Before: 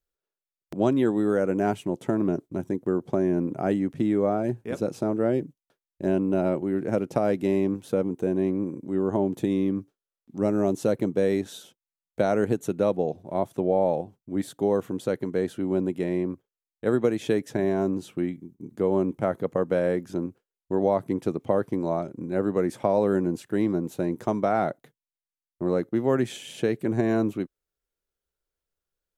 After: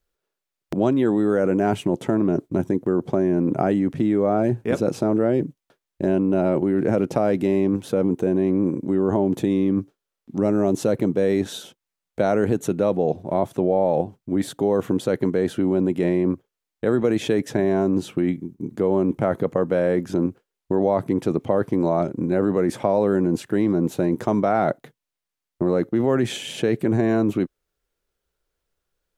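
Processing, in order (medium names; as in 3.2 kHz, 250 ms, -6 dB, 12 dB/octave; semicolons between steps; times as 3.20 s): treble shelf 5.7 kHz -5.5 dB; in parallel at +2 dB: compressor with a negative ratio -29 dBFS, ratio -1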